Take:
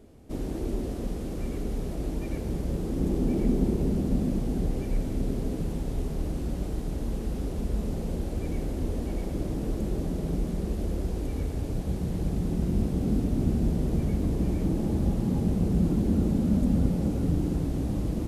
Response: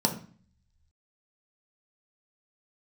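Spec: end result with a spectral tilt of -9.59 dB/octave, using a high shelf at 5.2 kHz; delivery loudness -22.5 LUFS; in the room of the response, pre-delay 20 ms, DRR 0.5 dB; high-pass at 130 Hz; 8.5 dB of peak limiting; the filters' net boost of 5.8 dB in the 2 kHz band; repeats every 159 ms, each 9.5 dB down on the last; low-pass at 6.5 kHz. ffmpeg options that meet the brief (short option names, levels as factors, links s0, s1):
-filter_complex "[0:a]highpass=130,lowpass=6500,equalizer=f=2000:t=o:g=8.5,highshelf=f=5200:g=-8.5,alimiter=limit=0.075:level=0:latency=1,aecho=1:1:159|318|477|636:0.335|0.111|0.0365|0.012,asplit=2[s0][s1];[1:a]atrim=start_sample=2205,adelay=20[s2];[s1][s2]afir=irnorm=-1:irlink=0,volume=0.299[s3];[s0][s3]amix=inputs=2:normalize=0,volume=1.06"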